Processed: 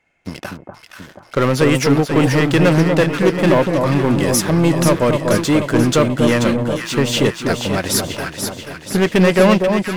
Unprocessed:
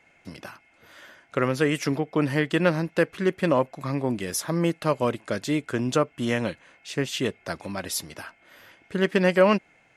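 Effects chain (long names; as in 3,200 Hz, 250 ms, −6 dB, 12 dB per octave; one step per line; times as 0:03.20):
low-shelf EQ 77 Hz +7.5 dB
leveller curve on the samples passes 3
delay that swaps between a low-pass and a high-pass 242 ms, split 1,100 Hz, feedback 75%, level −4 dB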